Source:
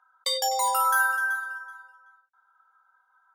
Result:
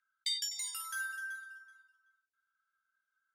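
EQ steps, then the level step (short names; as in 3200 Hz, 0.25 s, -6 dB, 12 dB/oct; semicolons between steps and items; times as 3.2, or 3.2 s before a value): steep high-pass 1800 Hz 36 dB/oct; LPF 9800 Hz 12 dB/oct; -6.5 dB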